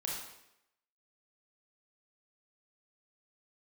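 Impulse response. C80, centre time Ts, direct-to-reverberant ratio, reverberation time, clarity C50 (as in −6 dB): 4.0 dB, 59 ms, −3.5 dB, 0.85 s, 1.0 dB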